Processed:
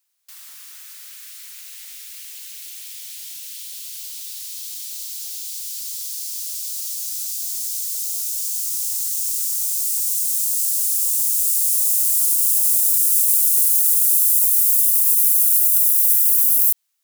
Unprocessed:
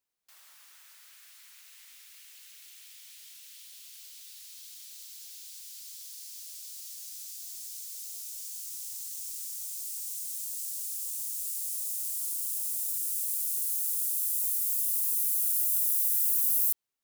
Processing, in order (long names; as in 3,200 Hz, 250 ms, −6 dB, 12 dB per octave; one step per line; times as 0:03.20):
high-pass filter 860 Hz 12 dB per octave
high-shelf EQ 3,200 Hz +8.5 dB
brickwall limiter −13.5 dBFS, peak gain reduction 8 dB
level +8 dB